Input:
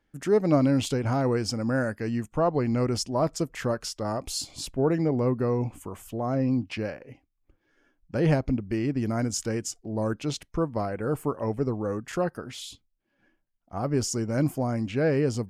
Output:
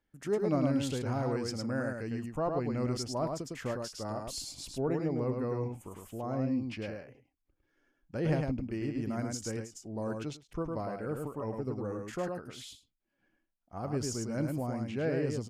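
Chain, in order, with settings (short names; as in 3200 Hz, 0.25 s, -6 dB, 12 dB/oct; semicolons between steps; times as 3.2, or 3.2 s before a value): echo 0.105 s -4 dB; ending taper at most 180 dB/s; gain -8.5 dB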